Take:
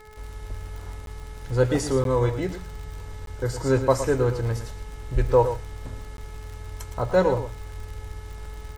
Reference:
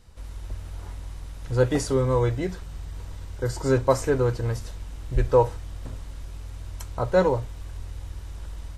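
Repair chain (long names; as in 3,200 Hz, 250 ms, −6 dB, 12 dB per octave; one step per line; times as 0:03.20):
click removal
hum removal 428.6 Hz, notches 5
repair the gap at 0:01.06/0:02.04/0:03.26/0:06.17, 12 ms
echo removal 113 ms −10.5 dB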